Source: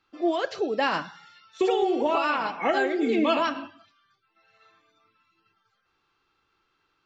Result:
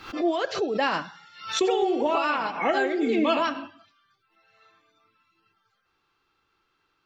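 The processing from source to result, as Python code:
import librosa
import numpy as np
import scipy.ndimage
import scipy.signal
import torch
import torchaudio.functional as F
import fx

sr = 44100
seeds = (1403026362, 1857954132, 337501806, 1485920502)

y = fx.pre_swell(x, sr, db_per_s=110.0)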